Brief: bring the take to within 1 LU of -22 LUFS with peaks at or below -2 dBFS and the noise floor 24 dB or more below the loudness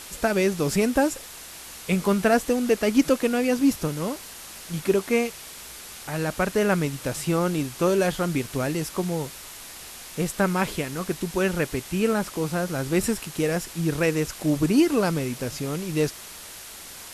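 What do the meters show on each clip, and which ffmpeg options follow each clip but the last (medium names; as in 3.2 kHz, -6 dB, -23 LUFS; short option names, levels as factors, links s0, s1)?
noise floor -41 dBFS; noise floor target -49 dBFS; loudness -24.5 LUFS; peak level -7.0 dBFS; loudness target -22.0 LUFS
-> -af "afftdn=nr=8:nf=-41"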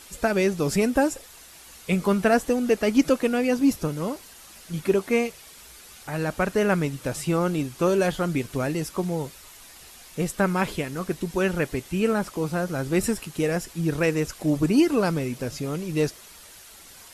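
noise floor -47 dBFS; noise floor target -49 dBFS
-> -af "afftdn=nr=6:nf=-47"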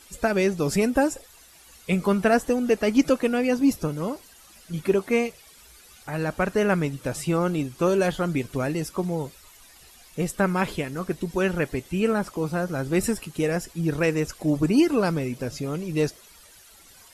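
noise floor -52 dBFS; loudness -25.0 LUFS; peak level -7.5 dBFS; loudness target -22.0 LUFS
-> -af "volume=1.41"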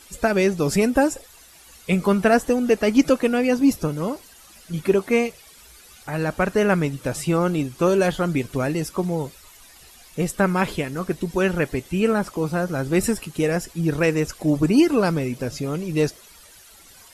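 loudness -22.0 LUFS; peak level -4.5 dBFS; noise floor -49 dBFS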